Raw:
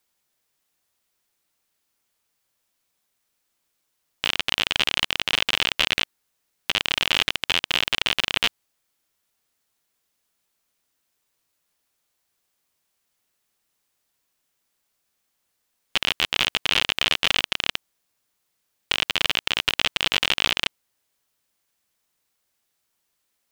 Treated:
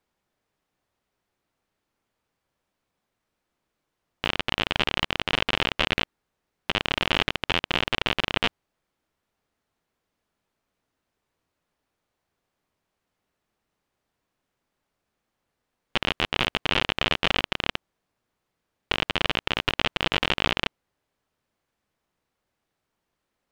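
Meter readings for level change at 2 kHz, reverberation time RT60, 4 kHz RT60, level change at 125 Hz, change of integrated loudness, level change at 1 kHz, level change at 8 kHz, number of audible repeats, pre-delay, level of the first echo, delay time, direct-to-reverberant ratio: -2.5 dB, none, none, +6.5 dB, -3.5 dB, +2.0 dB, -11.0 dB, none, none, none, none, none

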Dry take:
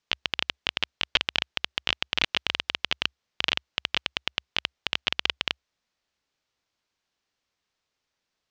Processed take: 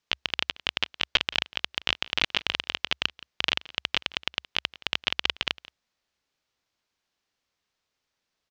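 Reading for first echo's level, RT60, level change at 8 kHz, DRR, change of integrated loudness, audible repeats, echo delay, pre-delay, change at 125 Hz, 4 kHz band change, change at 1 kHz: -20.5 dB, none, 0.0 dB, none, 0.0 dB, 1, 0.172 s, none, 0.0 dB, 0.0 dB, 0.0 dB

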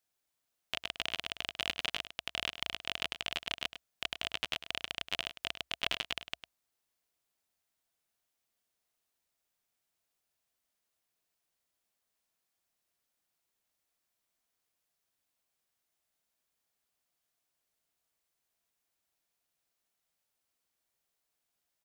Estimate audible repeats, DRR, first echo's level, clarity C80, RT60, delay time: 1, none, -12.0 dB, none, none, 0.103 s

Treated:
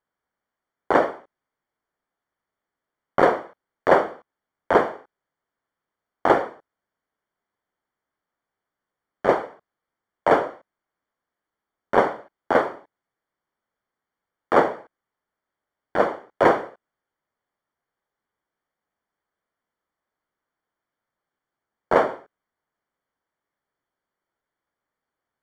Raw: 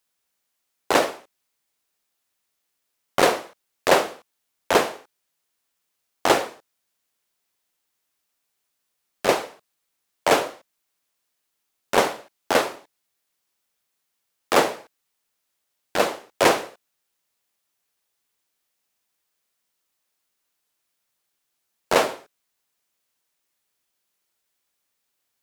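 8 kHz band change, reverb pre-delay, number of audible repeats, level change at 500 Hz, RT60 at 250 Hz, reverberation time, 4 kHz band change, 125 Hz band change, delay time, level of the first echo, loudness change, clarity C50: under -20 dB, none, none, +1.5 dB, none, none, -14.0 dB, +1.5 dB, none, none, +0.5 dB, none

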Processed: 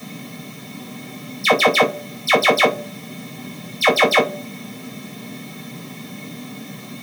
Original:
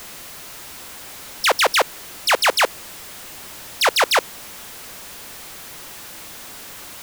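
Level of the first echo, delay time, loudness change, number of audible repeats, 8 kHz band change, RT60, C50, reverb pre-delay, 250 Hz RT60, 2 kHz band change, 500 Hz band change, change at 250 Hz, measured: none, none, +1.5 dB, none, -6.5 dB, 0.55 s, 13.0 dB, 3 ms, 0.40 s, +2.0 dB, +5.0 dB, +14.5 dB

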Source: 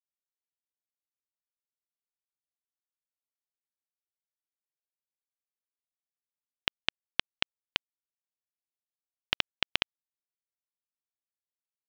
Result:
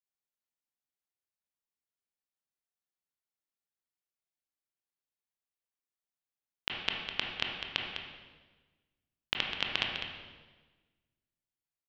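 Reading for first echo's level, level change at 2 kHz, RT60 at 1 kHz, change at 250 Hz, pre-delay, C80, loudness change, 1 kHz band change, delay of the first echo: -8.5 dB, -1.0 dB, 1.2 s, +0.5 dB, 19 ms, 3.0 dB, -2.0 dB, -0.5 dB, 0.203 s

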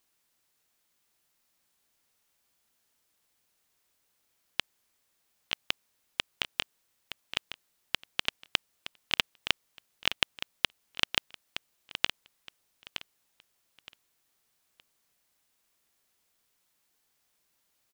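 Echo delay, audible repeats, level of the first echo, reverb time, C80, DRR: 0.918 s, 2, -11.0 dB, none, none, none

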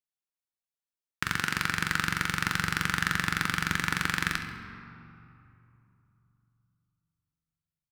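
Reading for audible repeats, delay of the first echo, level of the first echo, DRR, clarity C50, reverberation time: 2, 68 ms, -13.5 dB, 5.5 dB, 6.5 dB, 2.9 s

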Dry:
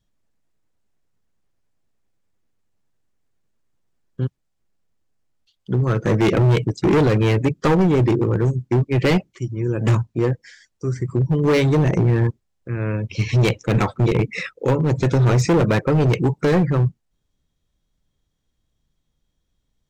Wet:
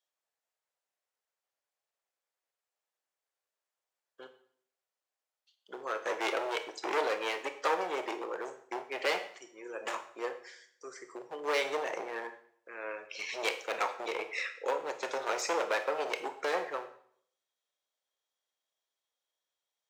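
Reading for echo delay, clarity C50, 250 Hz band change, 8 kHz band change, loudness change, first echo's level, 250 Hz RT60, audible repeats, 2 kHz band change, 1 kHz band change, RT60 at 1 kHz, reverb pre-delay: none, 11.0 dB, -27.0 dB, n/a, -15.5 dB, none, 0.70 s, none, -7.0 dB, -7.0 dB, 0.60 s, 20 ms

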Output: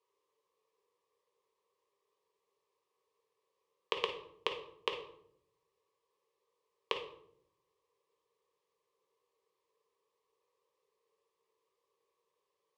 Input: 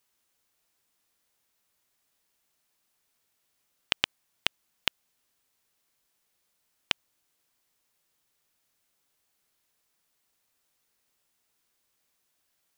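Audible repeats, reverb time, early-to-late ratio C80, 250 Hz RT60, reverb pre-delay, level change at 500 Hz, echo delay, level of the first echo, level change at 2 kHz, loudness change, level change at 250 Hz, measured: none, 0.70 s, 11.5 dB, 1.1 s, 4 ms, +8.5 dB, none, none, -9.0 dB, -7.5 dB, -4.5 dB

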